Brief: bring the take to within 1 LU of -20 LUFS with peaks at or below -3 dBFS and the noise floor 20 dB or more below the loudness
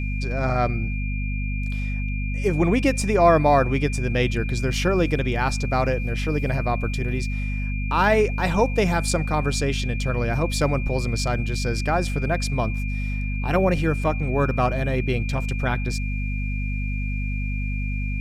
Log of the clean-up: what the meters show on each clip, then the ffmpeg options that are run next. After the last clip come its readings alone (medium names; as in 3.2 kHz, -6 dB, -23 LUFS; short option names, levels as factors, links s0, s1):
hum 50 Hz; highest harmonic 250 Hz; hum level -23 dBFS; steady tone 2.4 kHz; tone level -34 dBFS; loudness -23.5 LUFS; peak level -5.5 dBFS; loudness target -20.0 LUFS
-> -af "bandreject=f=50:t=h:w=6,bandreject=f=100:t=h:w=6,bandreject=f=150:t=h:w=6,bandreject=f=200:t=h:w=6,bandreject=f=250:t=h:w=6"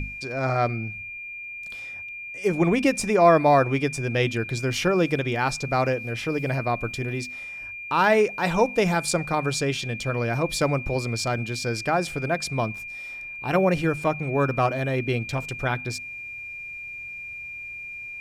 hum not found; steady tone 2.4 kHz; tone level -34 dBFS
-> -af "bandreject=f=2400:w=30"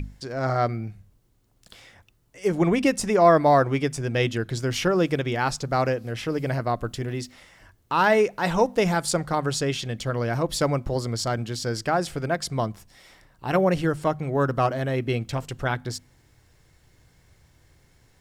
steady tone not found; loudness -24.5 LUFS; peak level -6.0 dBFS; loudness target -20.0 LUFS
-> -af "volume=1.68,alimiter=limit=0.708:level=0:latency=1"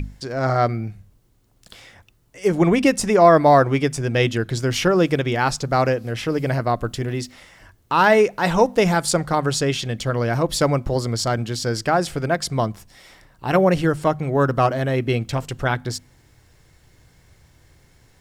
loudness -20.0 LUFS; peak level -3.0 dBFS; noise floor -57 dBFS